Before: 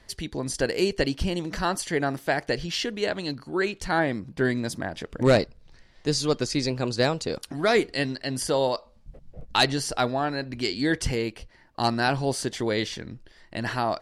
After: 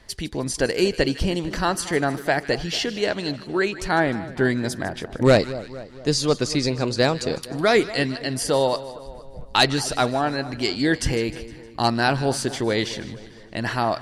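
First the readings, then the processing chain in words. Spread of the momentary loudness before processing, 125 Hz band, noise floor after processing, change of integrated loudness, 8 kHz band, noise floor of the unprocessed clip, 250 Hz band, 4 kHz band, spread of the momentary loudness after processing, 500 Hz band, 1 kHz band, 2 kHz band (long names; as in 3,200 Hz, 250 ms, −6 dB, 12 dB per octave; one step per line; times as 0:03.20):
10 LU, +3.5 dB, −42 dBFS, +3.5 dB, +3.5 dB, −56 dBFS, +3.5 dB, +3.5 dB, 11 LU, +3.5 dB, +3.5 dB, +3.5 dB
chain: echo with a time of its own for lows and highs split 1,200 Hz, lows 231 ms, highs 154 ms, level −15.5 dB
level +3.5 dB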